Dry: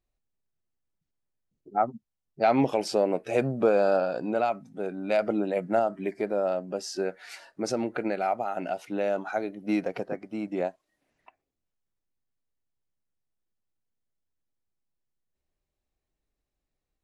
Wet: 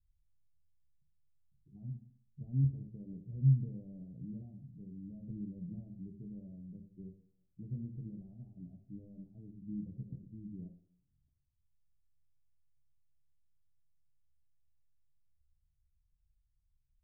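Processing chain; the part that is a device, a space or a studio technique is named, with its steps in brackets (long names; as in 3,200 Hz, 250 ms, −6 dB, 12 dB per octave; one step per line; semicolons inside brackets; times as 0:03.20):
club heard from the street (brickwall limiter −16 dBFS, peak gain reduction 5 dB; low-pass filter 130 Hz 24 dB per octave; convolution reverb RT60 0.65 s, pre-delay 4 ms, DRR 1.5 dB)
level +6.5 dB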